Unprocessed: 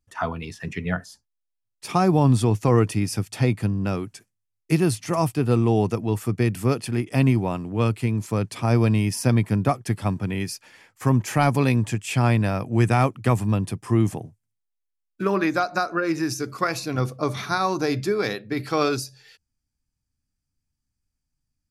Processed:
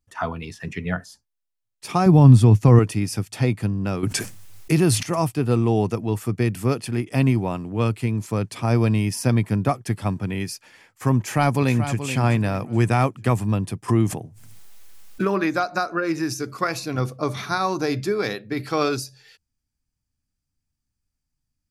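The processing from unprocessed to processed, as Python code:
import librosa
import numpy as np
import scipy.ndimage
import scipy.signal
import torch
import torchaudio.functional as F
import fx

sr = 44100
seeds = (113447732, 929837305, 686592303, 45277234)

y = fx.bass_treble(x, sr, bass_db=9, treble_db=-1, at=(2.06, 2.79))
y = fx.env_flatten(y, sr, amount_pct=70, at=(4.03, 5.03))
y = fx.echo_throw(y, sr, start_s=11.18, length_s=0.8, ms=430, feedback_pct=30, wet_db=-10.0)
y = fx.pre_swell(y, sr, db_per_s=29.0, at=(13.88, 15.28), fade=0.02)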